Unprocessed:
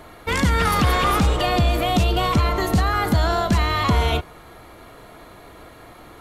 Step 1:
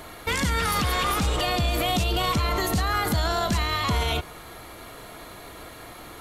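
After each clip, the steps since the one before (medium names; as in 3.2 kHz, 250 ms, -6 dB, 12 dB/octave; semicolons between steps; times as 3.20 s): treble shelf 2.6 kHz +8.5 dB; peak limiter -16 dBFS, peak gain reduction 10.5 dB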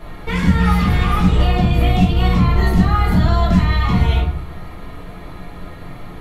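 tone controls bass +8 dB, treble -12 dB; simulated room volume 54 m³, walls mixed, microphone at 1.4 m; trim -3.5 dB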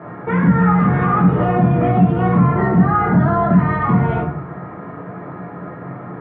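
elliptic band-pass 130–1600 Hz, stop band 70 dB; in parallel at +0.5 dB: peak limiter -15 dBFS, peak gain reduction 9.5 dB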